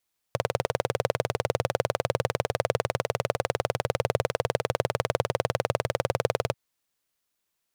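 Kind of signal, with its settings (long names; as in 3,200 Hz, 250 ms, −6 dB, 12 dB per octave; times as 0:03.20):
pulse-train model of a single-cylinder engine, steady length 6.19 s, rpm 2,400, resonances 120/510 Hz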